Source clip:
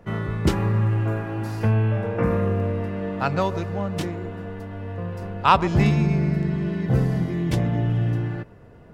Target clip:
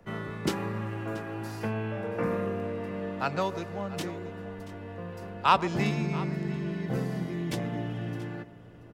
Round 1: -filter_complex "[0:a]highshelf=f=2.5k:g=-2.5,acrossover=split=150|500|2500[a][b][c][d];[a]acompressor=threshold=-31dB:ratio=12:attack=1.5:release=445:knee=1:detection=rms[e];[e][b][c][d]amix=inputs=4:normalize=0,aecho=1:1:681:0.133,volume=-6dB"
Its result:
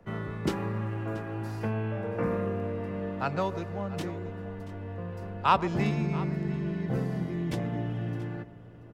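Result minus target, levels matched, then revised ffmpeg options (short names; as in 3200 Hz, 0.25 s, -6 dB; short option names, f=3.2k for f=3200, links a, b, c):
compressor: peak gain reduction -7.5 dB; 4000 Hz band -4.5 dB
-filter_complex "[0:a]highshelf=f=2.5k:g=4,acrossover=split=150|500|2500[a][b][c][d];[a]acompressor=threshold=-39dB:ratio=12:attack=1.5:release=445:knee=1:detection=rms[e];[e][b][c][d]amix=inputs=4:normalize=0,aecho=1:1:681:0.133,volume=-6dB"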